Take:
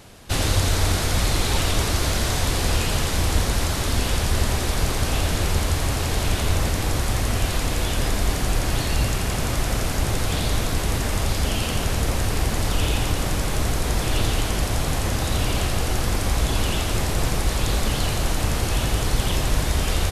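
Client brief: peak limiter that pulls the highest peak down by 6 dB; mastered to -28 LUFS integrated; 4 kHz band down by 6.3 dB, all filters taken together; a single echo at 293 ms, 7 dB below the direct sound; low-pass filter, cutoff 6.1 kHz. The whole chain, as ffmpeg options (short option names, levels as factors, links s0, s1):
-af "lowpass=6100,equalizer=f=4000:t=o:g=-7.5,alimiter=limit=0.211:level=0:latency=1,aecho=1:1:293:0.447,volume=0.708"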